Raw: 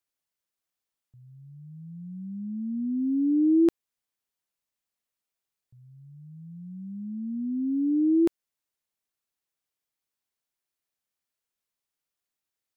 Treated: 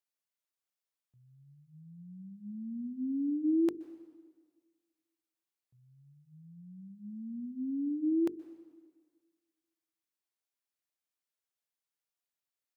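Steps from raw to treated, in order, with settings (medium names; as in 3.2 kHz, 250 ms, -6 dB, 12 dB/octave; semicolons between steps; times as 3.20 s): high-pass 190 Hz 6 dB/octave; hum notches 50/100/150/200/250/300/350/400/450 Hz; reverberation RT60 1.6 s, pre-delay 119 ms, DRR 17.5 dB; trim -6 dB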